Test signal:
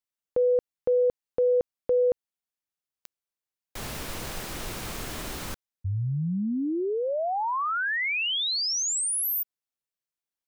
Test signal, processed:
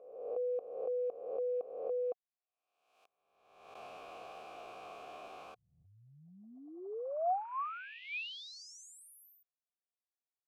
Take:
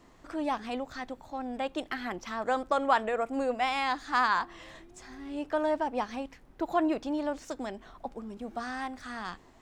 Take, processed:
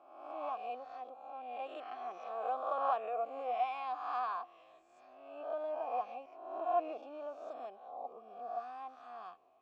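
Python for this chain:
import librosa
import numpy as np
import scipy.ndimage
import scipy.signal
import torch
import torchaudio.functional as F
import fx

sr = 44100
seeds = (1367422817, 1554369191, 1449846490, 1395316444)

y = fx.spec_swells(x, sr, rise_s=1.0)
y = fx.vowel_filter(y, sr, vowel='a')
y = fx.peak_eq(y, sr, hz=440.0, db=6.0, octaves=0.56)
y = y * librosa.db_to_amplitude(-3.5)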